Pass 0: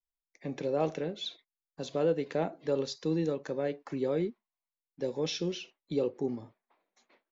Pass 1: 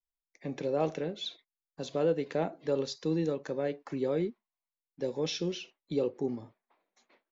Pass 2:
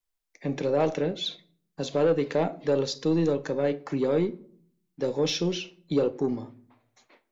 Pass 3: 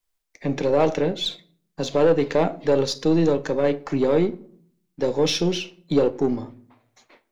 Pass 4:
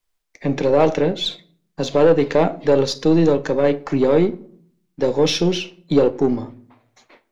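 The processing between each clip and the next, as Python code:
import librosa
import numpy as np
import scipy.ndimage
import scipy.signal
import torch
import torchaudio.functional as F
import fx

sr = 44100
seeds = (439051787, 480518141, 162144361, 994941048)

y1 = x
y2 = 10.0 ** (-22.5 / 20.0) * np.tanh(y1 / 10.0 ** (-22.5 / 20.0))
y2 = fx.room_shoebox(y2, sr, seeds[0], volume_m3=690.0, walls='furnished', distance_m=0.44)
y2 = y2 * librosa.db_to_amplitude(7.0)
y3 = np.where(y2 < 0.0, 10.0 ** (-3.0 / 20.0) * y2, y2)
y3 = y3 * librosa.db_to_amplitude(6.5)
y4 = fx.high_shelf(y3, sr, hz=6500.0, db=-5.0)
y4 = y4 * librosa.db_to_amplitude(4.0)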